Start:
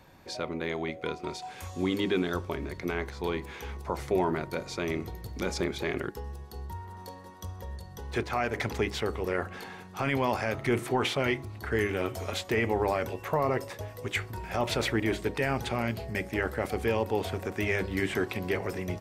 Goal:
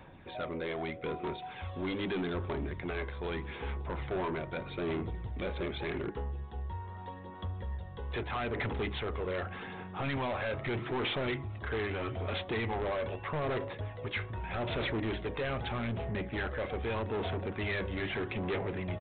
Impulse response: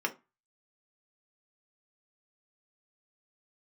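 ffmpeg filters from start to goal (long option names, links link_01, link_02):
-af "aphaser=in_gain=1:out_gain=1:delay=1.9:decay=0.37:speed=0.81:type=sinusoidal,aresample=8000,asoftclip=type=tanh:threshold=-30dB,aresample=44100"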